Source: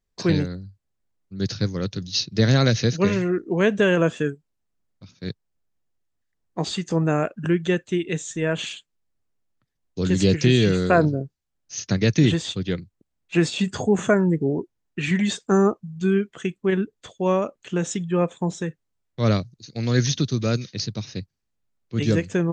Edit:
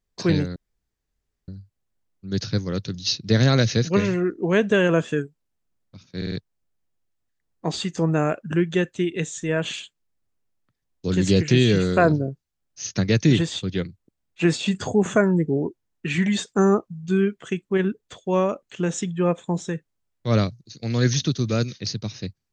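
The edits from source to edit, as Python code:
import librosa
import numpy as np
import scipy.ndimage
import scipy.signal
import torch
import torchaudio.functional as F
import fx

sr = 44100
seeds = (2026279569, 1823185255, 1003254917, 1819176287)

y = fx.edit(x, sr, fx.insert_room_tone(at_s=0.56, length_s=0.92),
    fx.stutter(start_s=5.25, slice_s=0.05, count=4), tone=tone)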